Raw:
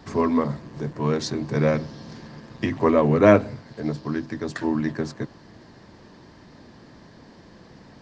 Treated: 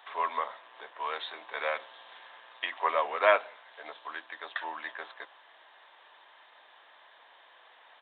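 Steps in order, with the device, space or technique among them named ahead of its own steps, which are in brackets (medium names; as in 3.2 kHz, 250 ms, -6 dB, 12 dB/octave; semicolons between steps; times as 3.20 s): musical greeting card (resampled via 8 kHz; high-pass 730 Hz 24 dB/octave; peaking EQ 3.5 kHz +6.5 dB 0.59 oct); trim -1.5 dB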